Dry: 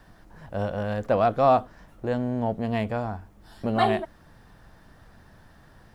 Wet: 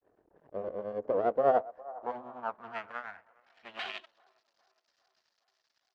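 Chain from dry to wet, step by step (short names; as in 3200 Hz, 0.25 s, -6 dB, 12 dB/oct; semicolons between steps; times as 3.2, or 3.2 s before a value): bell 170 Hz -7 dB 0.52 oct; notch 3500 Hz, Q 7.5; in parallel at -5.5 dB: backlash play -29 dBFS; on the sum: downsampling 16000 Hz; half-wave rectifier; grains 0.158 s, grains 10/s, spray 11 ms, pitch spread up and down by 0 st; band-limited delay 0.408 s, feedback 62%, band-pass 670 Hz, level -20.5 dB; band-pass sweep 430 Hz -> 4800 Hz, 1.18–4.53; gain +2 dB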